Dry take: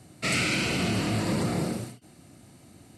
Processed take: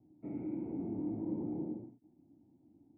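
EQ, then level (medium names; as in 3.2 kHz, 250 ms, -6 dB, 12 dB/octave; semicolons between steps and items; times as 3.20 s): dynamic bell 450 Hz, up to +4 dB, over -40 dBFS, Q 0.92; cascade formant filter u; -5.0 dB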